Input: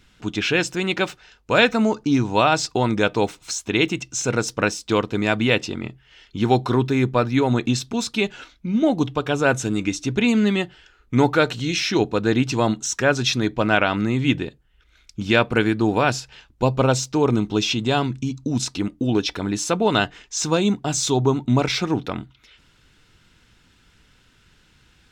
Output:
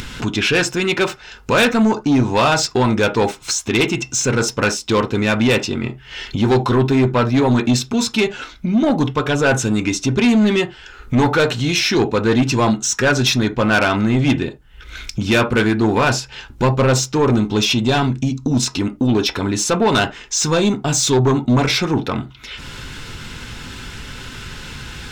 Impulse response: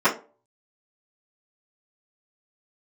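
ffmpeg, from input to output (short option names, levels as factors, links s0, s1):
-filter_complex "[0:a]asplit=2[s0][s1];[s1]equalizer=f=840:w=6.8:g=7[s2];[1:a]atrim=start_sample=2205,atrim=end_sample=3969[s3];[s2][s3]afir=irnorm=-1:irlink=0,volume=0.0473[s4];[s0][s4]amix=inputs=2:normalize=0,acompressor=mode=upward:threshold=0.0708:ratio=2.5,asoftclip=type=tanh:threshold=0.158,volume=2.24"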